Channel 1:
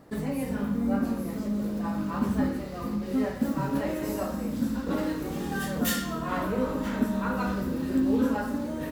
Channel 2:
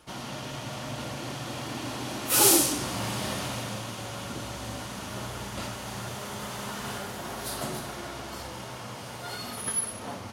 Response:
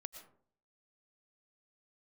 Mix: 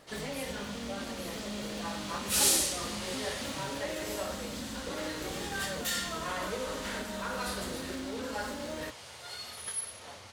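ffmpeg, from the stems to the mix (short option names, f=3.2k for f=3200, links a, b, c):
-filter_complex "[0:a]alimiter=limit=-23dB:level=0:latency=1:release=104,volume=-4.5dB[a];[1:a]equalizer=f=82:w=6.3:g=13.5,volume=-12.5dB[b];[a][b]amix=inputs=2:normalize=0,equalizer=f=125:t=o:w=1:g=-4,equalizer=f=250:t=o:w=1:g=-7,equalizer=f=500:t=o:w=1:g=4,equalizer=f=2k:t=o:w=1:g=6,equalizer=f=4k:t=o:w=1:g=8,equalizer=f=8k:t=o:w=1:g=8"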